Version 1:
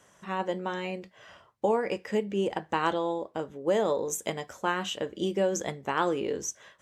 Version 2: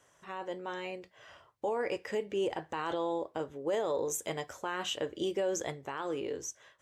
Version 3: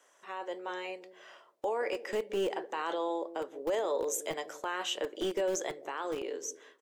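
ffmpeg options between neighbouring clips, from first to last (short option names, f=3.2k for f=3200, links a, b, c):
-af "equalizer=f=200:t=o:w=0.31:g=-13,alimiter=limit=-23dB:level=0:latency=1:release=11,dynaudnorm=f=360:g=7:m=4.5dB,volume=-5.5dB"
-filter_complex "[0:a]acrossover=split=280|570|4700[a][b][c][d];[a]acrusher=bits=4:dc=4:mix=0:aa=0.000001[e];[b]aecho=1:1:169|338|507:0.355|0.0887|0.0222[f];[e][f][c][d]amix=inputs=4:normalize=0,volume=1dB"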